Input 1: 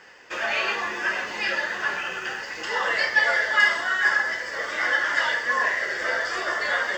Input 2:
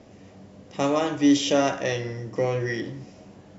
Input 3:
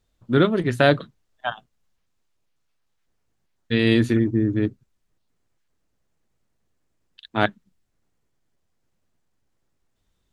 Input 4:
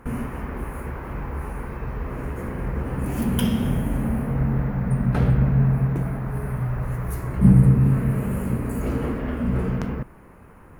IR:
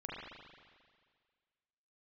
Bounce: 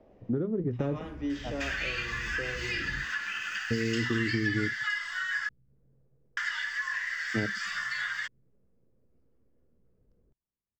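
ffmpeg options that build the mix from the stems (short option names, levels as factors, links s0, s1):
-filter_complex "[0:a]highpass=f=1300:w=0.5412,highpass=f=1300:w=1.3066,adelay=1300,volume=1.41,asplit=3[s0][s1][s2];[s0]atrim=end=5.49,asetpts=PTS-STARTPTS,afade=t=out:st=5.486:d=0.004:c=hsin[s3];[s1]atrim=start=5.49:end=6.37,asetpts=PTS-STARTPTS,volume=0[s4];[s2]atrim=start=6.37,asetpts=PTS-STARTPTS,afade=t=in:d=0.004:c=hsin[s5];[s3][s4][s5]concat=n=3:v=0:a=1[s6];[1:a]lowpass=3500,equalizer=f=560:w=0.59:g=12,volume=0.133,asplit=2[s7][s8];[2:a]lowpass=f=480:t=q:w=4.5,volume=0.668[s9];[3:a]lowpass=f=5100:t=q:w=4.9,adelay=300,volume=0.106[s10];[s8]apad=whole_len=489123[s11];[s10][s11]sidechaingate=range=0.0141:threshold=0.00316:ratio=16:detection=peak[s12];[s9][s12]amix=inputs=2:normalize=0,lowshelf=f=340:g=7.5,acompressor=threshold=0.224:ratio=6,volume=1[s13];[s6][s7][s13]amix=inputs=3:normalize=0,acrossover=split=370|1100[s14][s15][s16];[s14]acompressor=threshold=0.0355:ratio=4[s17];[s15]acompressor=threshold=0.00224:ratio=4[s18];[s16]acompressor=threshold=0.0224:ratio=4[s19];[s17][s18][s19]amix=inputs=3:normalize=0"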